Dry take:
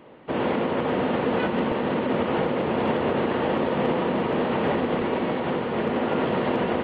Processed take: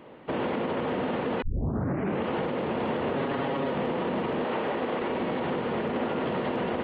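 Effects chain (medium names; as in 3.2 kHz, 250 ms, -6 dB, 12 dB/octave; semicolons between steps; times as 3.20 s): 1.42 s: tape start 0.83 s; 3.16–3.72 s: comb 7.3 ms, depth 79%; 4.44–5.10 s: tone controls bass -9 dB, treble -2 dB; peak limiter -21 dBFS, peak gain reduction 10 dB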